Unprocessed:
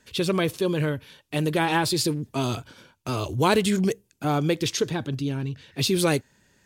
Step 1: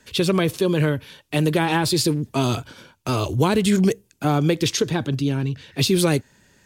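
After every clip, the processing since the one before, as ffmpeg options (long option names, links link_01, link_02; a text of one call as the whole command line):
ffmpeg -i in.wav -filter_complex "[0:a]acrossover=split=290[link_01][link_02];[link_02]acompressor=threshold=-24dB:ratio=6[link_03];[link_01][link_03]amix=inputs=2:normalize=0,volume=5.5dB" out.wav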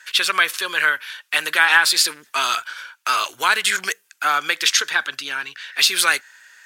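ffmpeg -i in.wav -af "highpass=frequency=1500:width_type=q:width=2.8,volume=6.5dB" out.wav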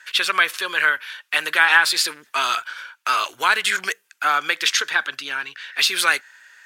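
ffmpeg -i in.wav -af "bass=frequency=250:gain=-2,treble=frequency=4000:gain=-5" out.wav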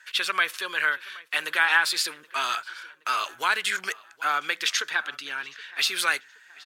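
ffmpeg -i in.wav -filter_complex "[0:a]asplit=2[link_01][link_02];[link_02]adelay=773,lowpass=frequency=4100:poles=1,volume=-21.5dB,asplit=2[link_03][link_04];[link_04]adelay=773,lowpass=frequency=4100:poles=1,volume=0.46,asplit=2[link_05][link_06];[link_06]adelay=773,lowpass=frequency=4100:poles=1,volume=0.46[link_07];[link_01][link_03][link_05][link_07]amix=inputs=4:normalize=0,volume=-6dB" out.wav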